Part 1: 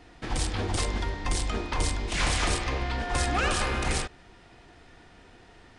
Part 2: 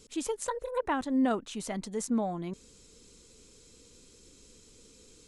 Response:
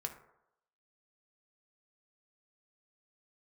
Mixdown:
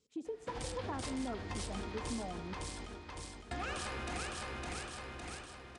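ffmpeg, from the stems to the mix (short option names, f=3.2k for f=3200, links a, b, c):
-filter_complex "[0:a]adelay=250,volume=-6dB,asplit=3[a][b][c];[a]atrim=end=2.3,asetpts=PTS-STARTPTS,afade=t=out:st=2.296:d=0.004:c=hsin[d];[b]atrim=start=2.3:end=3.51,asetpts=PTS-STARTPTS,volume=0[e];[c]atrim=start=3.51,asetpts=PTS-STARTPTS,afade=t=in:d=0.004:c=hsin[f];[d][e][f]concat=n=3:v=0:a=1,asplit=2[g][h];[h]volume=-4dB[i];[1:a]afwtdn=0.0178,lowpass=7.1k,volume=-7dB,asplit=2[j][k];[k]volume=-4dB[l];[2:a]atrim=start_sample=2205[m];[l][m]afir=irnorm=-1:irlink=0[n];[i]aecho=0:1:559|1118|1677|2236|2795|3354:1|0.45|0.202|0.0911|0.041|0.0185[o];[g][j][n][o]amix=inputs=4:normalize=0,highpass=60,acompressor=threshold=-40dB:ratio=2.5"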